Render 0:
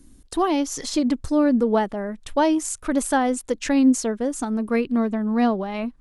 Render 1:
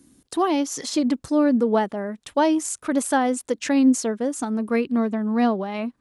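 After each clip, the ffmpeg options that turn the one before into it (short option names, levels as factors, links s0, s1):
-af "highpass=130"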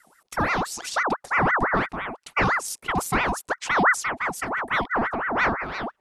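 -af "aeval=exprs='val(0)*sin(2*PI*1100*n/s+1100*0.6/5.9*sin(2*PI*5.9*n/s))':c=same"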